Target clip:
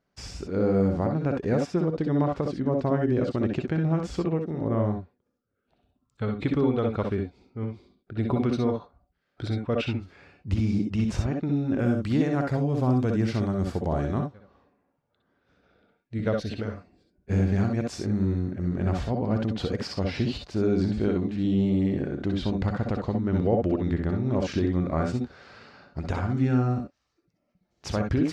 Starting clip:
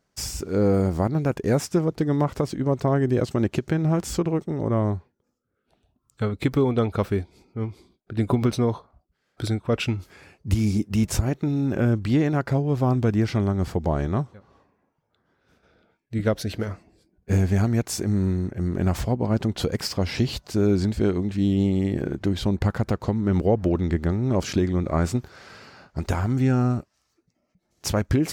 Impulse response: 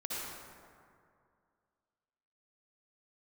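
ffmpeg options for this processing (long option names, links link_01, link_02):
-filter_complex "[0:a]asetnsamples=nb_out_samples=441:pad=0,asendcmd='11.79 lowpass f 10000;14.19 lowpass f 4500',lowpass=4000[link_01];[1:a]atrim=start_sample=2205,atrim=end_sample=3087[link_02];[link_01][link_02]afir=irnorm=-1:irlink=0"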